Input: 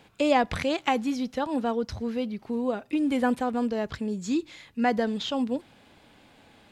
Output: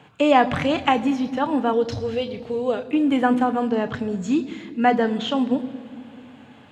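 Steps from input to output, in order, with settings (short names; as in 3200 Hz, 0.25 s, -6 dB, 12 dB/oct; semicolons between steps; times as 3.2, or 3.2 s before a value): 1.73–2.85 graphic EQ 125/250/500/1000/4000/8000 Hz +5/-11/+7/-7/+8/+5 dB; reverb RT60 2.3 s, pre-delay 3 ms, DRR 9 dB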